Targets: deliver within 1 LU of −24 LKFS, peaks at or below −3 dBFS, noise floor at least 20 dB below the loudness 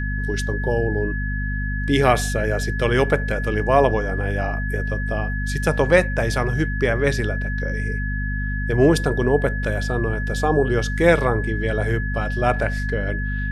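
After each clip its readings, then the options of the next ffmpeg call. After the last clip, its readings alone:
mains hum 50 Hz; hum harmonics up to 250 Hz; level of the hum −22 dBFS; interfering tone 1,700 Hz; level of the tone −29 dBFS; integrated loudness −21.5 LKFS; sample peak −1.5 dBFS; target loudness −24.0 LKFS
→ -af "bandreject=frequency=50:width_type=h:width=4,bandreject=frequency=100:width_type=h:width=4,bandreject=frequency=150:width_type=h:width=4,bandreject=frequency=200:width_type=h:width=4,bandreject=frequency=250:width_type=h:width=4"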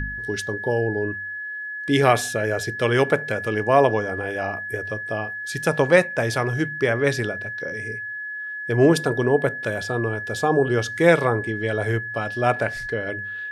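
mains hum none found; interfering tone 1,700 Hz; level of the tone −29 dBFS
→ -af "bandreject=frequency=1700:width=30"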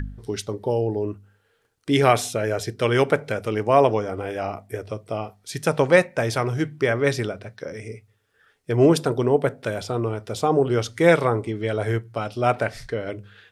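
interfering tone none found; integrated loudness −22.5 LKFS; sample peak −2.0 dBFS; target loudness −24.0 LKFS
→ -af "volume=-1.5dB"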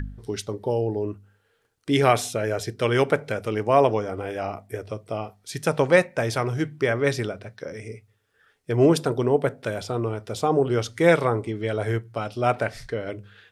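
integrated loudness −24.0 LKFS; sample peak −3.5 dBFS; background noise floor −67 dBFS

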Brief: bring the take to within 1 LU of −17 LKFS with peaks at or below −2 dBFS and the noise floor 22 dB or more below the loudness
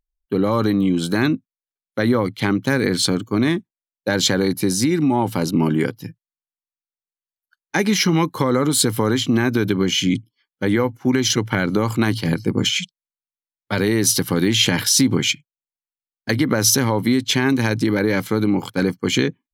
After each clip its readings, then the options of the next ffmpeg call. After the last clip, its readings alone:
integrated loudness −19.0 LKFS; sample peak −3.0 dBFS; target loudness −17.0 LKFS
→ -af "volume=2dB,alimiter=limit=-2dB:level=0:latency=1"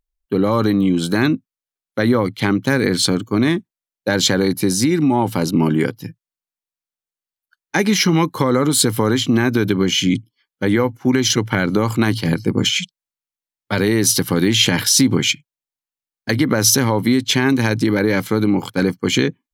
integrated loudness −17.0 LKFS; sample peak −2.0 dBFS; background noise floor −92 dBFS

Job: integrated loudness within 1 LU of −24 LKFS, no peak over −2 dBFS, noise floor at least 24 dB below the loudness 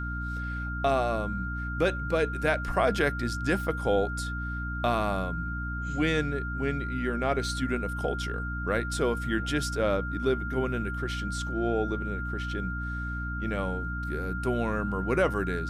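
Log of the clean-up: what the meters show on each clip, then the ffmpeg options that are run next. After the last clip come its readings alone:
mains hum 60 Hz; hum harmonics up to 300 Hz; level of the hum −32 dBFS; interfering tone 1,400 Hz; level of the tone −35 dBFS; integrated loudness −29.5 LKFS; sample peak −11.0 dBFS; target loudness −24.0 LKFS
→ -af "bandreject=frequency=60:width_type=h:width=6,bandreject=frequency=120:width_type=h:width=6,bandreject=frequency=180:width_type=h:width=6,bandreject=frequency=240:width_type=h:width=6,bandreject=frequency=300:width_type=h:width=6"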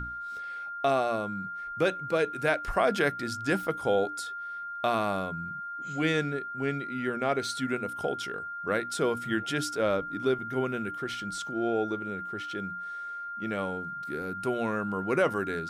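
mains hum none found; interfering tone 1,400 Hz; level of the tone −35 dBFS
→ -af "bandreject=frequency=1400:width=30"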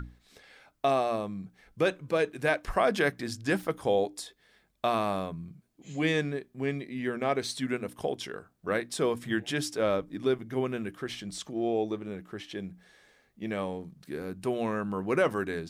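interfering tone none found; integrated loudness −31.0 LKFS; sample peak −11.5 dBFS; target loudness −24.0 LKFS
→ -af "volume=7dB"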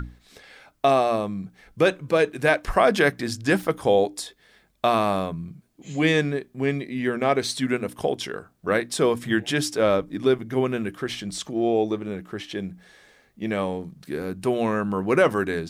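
integrated loudness −24.0 LKFS; sample peak −4.5 dBFS; background noise floor −61 dBFS

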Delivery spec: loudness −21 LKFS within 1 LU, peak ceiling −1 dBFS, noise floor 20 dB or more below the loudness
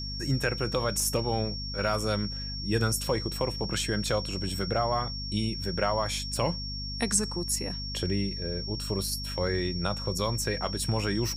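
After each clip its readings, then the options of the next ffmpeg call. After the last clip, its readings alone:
mains hum 50 Hz; hum harmonics up to 250 Hz; level of the hum −35 dBFS; interfering tone 5,500 Hz; level of the tone −36 dBFS; integrated loudness −29.5 LKFS; sample peak −11.0 dBFS; target loudness −21.0 LKFS
→ -af "bandreject=frequency=50:width_type=h:width=4,bandreject=frequency=100:width_type=h:width=4,bandreject=frequency=150:width_type=h:width=4,bandreject=frequency=200:width_type=h:width=4,bandreject=frequency=250:width_type=h:width=4"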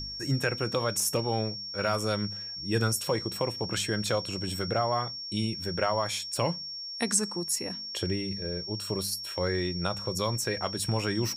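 mains hum none found; interfering tone 5,500 Hz; level of the tone −36 dBFS
→ -af "bandreject=frequency=5500:width=30"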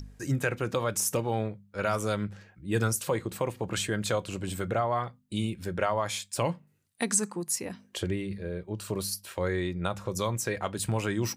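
interfering tone none found; integrated loudness −31.0 LKFS; sample peak −12.0 dBFS; target loudness −21.0 LKFS
→ -af "volume=10dB"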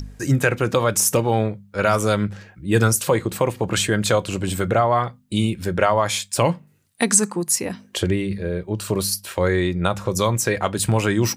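integrated loudness −21.0 LKFS; sample peak −2.0 dBFS; background noise floor −54 dBFS

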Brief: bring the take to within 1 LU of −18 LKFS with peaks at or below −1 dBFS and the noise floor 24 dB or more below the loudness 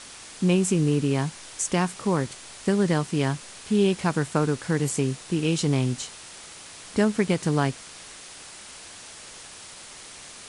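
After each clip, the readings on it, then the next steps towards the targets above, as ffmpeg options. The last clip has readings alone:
background noise floor −44 dBFS; target noise floor −49 dBFS; integrated loudness −25.0 LKFS; sample peak −8.0 dBFS; target loudness −18.0 LKFS
→ -af "afftdn=noise_reduction=6:noise_floor=-44"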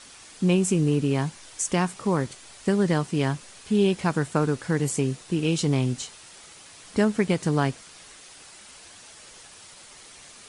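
background noise floor −48 dBFS; target noise floor −49 dBFS
→ -af "afftdn=noise_reduction=6:noise_floor=-48"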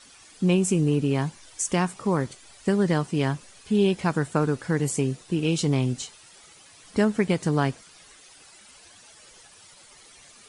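background noise floor −52 dBFS; integrated loudness −25.0 LKFS; sample peak −8.5 dBFS; target loudness −18.0 LKFS
→ -af "volume=7dB"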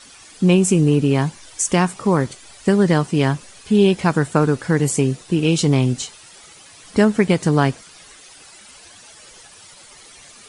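integrated loudness −18.0 LKFS; sample peak −1.5 dBFS; background noise floor −45 dBFS

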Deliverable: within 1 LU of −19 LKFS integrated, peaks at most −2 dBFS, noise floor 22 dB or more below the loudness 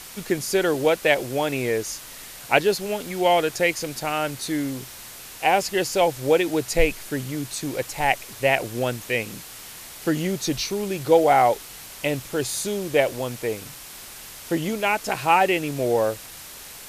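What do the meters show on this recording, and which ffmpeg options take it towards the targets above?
background noise floor −41 dBFS; target noise floor −45 dBFS; integrated loudness −23.0 LKFS; sample peak −2.5 dBFS; target loudness −19.0 LKFS
→ -af "afftdn=noise_reduction=6:noise_floor=-41"
-af "volume=4dB,alimiter=limit=-2dB:level=0:latency=1"

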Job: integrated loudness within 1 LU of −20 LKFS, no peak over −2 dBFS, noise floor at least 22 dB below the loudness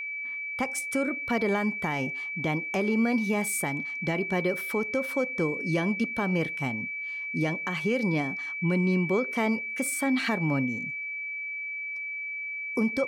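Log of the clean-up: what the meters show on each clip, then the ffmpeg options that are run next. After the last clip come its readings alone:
interfering tone 2,300 Hz; level of the tone −32 dBFS; integrated loudness −28.0 LKFS; sample peak −16.5 dBFS; target loudness −20.0 LKFS
→ -af "bandreject=frequency=2300:width=30"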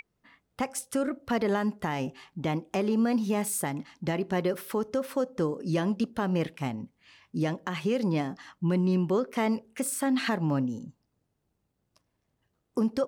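interfering tone none found; integrated loudness −29.5 LKFS; sample peak −18.0 dBFS; target loudness −20.0 LKFS
→ -af "volume=9.5dB"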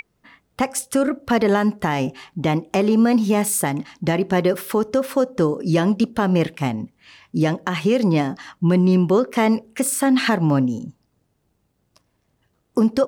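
integrated loudness −20.0 LKFS; sample peak −8.5 dBFS; background noise floor −69 dBFS

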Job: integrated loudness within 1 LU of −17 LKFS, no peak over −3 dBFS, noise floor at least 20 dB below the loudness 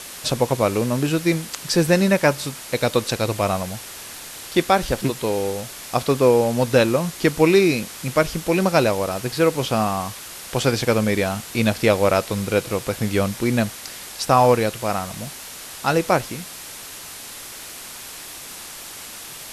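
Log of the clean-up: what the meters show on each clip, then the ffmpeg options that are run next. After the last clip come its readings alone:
background noise floor −37 dBFS; target noise floor −41 dBFS; integrated loudness −20.5 LKFS; sample peak −3.0 dBFS; target loudness −17.0 LKFS
→ -af "afftdn=noise_reduction=6:noise_floor=-37"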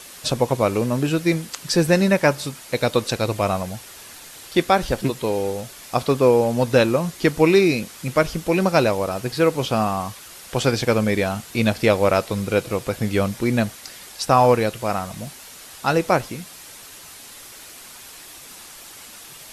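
background noise floor −42 dBFS; integrated loudness −20.5 LKFS; sample peak −3.0 dBFS; target loudness −17.0 LKFS
→ -af "volume=3.5dB,alimiter=limit=-3dB:level=0:latency=1"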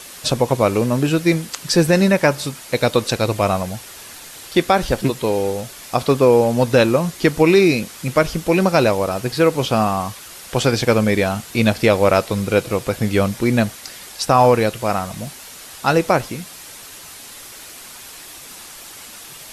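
integrated loudness −17.5 LKFS; sample peak −3.0 dBFS; background noise floor −38 dBFS

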